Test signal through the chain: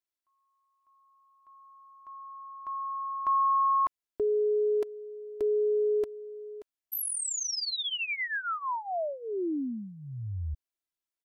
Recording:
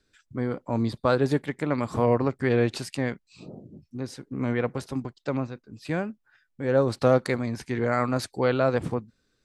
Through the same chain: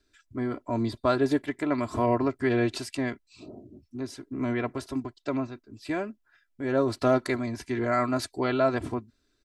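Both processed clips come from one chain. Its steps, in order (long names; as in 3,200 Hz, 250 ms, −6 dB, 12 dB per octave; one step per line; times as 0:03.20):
comb filter 3 ms, depth 74%
level −2.5 dB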